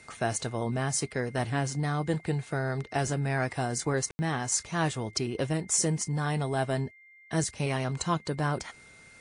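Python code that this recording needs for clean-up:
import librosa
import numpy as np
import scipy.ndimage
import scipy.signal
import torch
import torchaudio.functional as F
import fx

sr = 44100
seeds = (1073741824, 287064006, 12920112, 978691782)

y = fx.notch(x, sr, hz=2100.0, q=30.0)
y = fx.fix_ambience(y, sr, seeds[0], print_start_s=8.69, print_end_s=9.19, start_s=4.11, end_s=4.19)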